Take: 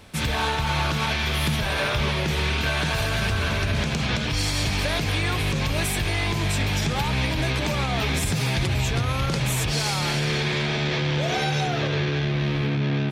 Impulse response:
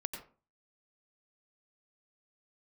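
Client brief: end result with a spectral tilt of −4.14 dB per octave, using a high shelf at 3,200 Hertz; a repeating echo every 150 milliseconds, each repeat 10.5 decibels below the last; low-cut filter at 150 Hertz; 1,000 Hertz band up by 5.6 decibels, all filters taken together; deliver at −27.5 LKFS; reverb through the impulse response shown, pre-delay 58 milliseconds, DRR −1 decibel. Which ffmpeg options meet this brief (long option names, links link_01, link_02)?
-filter_complex "[0:a]highpass=150,equalizer=frequency=1000:width_type=o:gain=7.5,highshelf=frequency=3200:gain=-4,aecho=1:1:150|300|450:0.299|0.0896|0.0269,asplit=2[link_01][link_02];[1:a]atrim=start_sample=2205,adelay=58[link_03];[link_02][link_03]afir=irnorm=-1:irlink=0,volume=1dB[link_04];[link_01][link_04]amix=inputs=2:normalize=0,volume=-7dB"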